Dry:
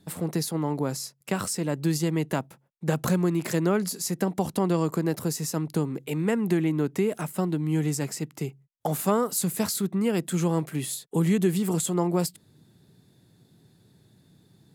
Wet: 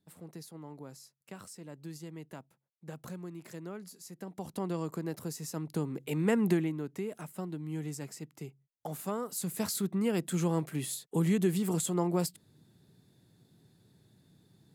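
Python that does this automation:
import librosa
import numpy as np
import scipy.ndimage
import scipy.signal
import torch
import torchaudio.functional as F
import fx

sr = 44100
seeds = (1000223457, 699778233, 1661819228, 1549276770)

y = fx.gain(x, sr, db=fx.line((4.16, -19.0), (4.6, -10.5), (5.41, -10.5), (6.46, -1.0), (6.8, -12.0), (9.18, -12.0), (9.77, -5.0)))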